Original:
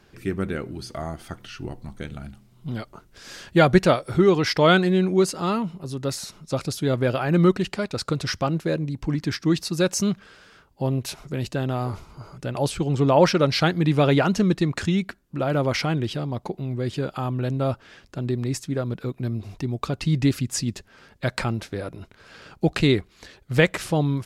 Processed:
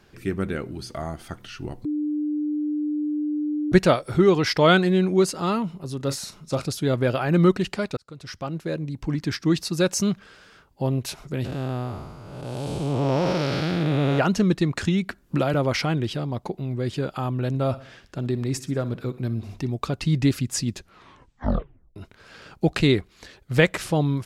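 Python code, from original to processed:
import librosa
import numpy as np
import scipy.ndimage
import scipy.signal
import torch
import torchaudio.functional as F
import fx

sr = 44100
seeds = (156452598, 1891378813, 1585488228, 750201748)

y = fx.doubler(x, sr, ms=36.0, db=-12, at=(5.99, 6.64), fade=0.02)
y = fx.spec_blur(y, sr, span_ms=354.0, at=(11.44, 14.18), fade=0.02)
y = fx.band_squash(y, sr, depth_pct=100, at=(14.86, 15.54))
y = fx.echo_feedback(y, sr, ms=61, feedback_pct=49, wet_db=-17.0, at=(17.48, 19.7))
y = fx.edit(y, sr, fx.bleep(start_s=1.85, length_s=1.87, hz=299.0, db=-22.5),
    fx.fade_in_span(start_s=7.97, length_s=1.7, curve='qsin'),
    fx.tape_stop(start_s=20.73, length_s=1.23), tone=tone)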